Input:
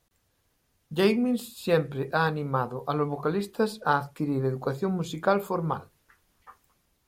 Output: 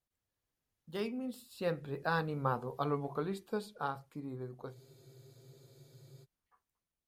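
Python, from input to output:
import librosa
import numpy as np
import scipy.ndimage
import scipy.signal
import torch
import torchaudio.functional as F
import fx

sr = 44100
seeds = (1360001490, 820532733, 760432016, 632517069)

y = fx.doppler_pass(x, sr, speed_mps=14, closest_m=8.3, pass_at_s=2.58)
y = fx.spec_freeze(y, sr, seeds[0], at_s=4.75, hold_s=1.48)
y = F.gain(torch.from_numpy(y), -6.0).numpy()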